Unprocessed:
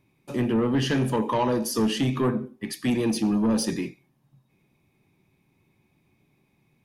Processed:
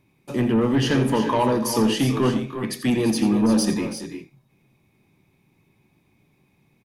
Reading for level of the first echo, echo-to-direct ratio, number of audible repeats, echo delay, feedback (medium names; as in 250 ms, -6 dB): -12.0 dB, -7.0 dB, 2, 86 ms, no regular repeats